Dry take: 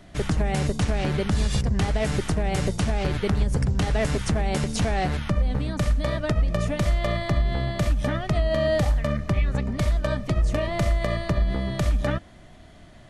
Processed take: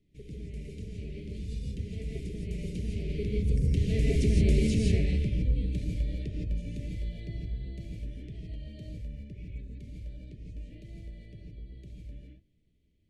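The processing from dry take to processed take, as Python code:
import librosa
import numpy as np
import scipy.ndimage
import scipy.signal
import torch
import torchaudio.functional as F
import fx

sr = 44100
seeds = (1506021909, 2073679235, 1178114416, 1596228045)

y = fx.doppler_pass(x, sr, speed_mps=5, closest_m=2.6, pass_at_s=4.45)
y = scipy.signal.sosfilt(scipy.signal.cheby1(3, 1.0, [450.0, 2300.0], 'bandstop', fs=sr, output='sos'), y)
y = fx.high_shelf(y, sr, hz=2500.0, db=-10.0)
y = fx.rev_gated(y, sr, seeds[0], gate_ms=190, shape='rising', drr_db=-2.5)
y = y * librosa.db_to_amplitude(-2.0)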